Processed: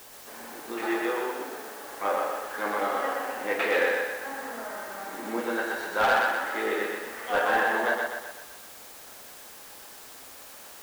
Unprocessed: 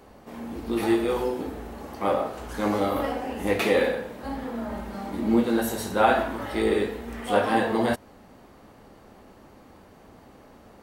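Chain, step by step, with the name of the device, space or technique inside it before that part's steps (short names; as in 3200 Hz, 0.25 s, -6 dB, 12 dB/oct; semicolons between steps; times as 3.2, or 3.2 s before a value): drive-through speaker (BPF 480–3100 Hz; bell 1600 Hz +8 dB 0.55 oct; hard clip -16 dBFS, distortion -16 dB; white noise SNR 17 dB); 1.02–1.86 HPF 120 Hz 12 dB/oct; thinning echo 0.124 s, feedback 51%, high-pass 190 Hz, level -3 dB; gain -2.5 dB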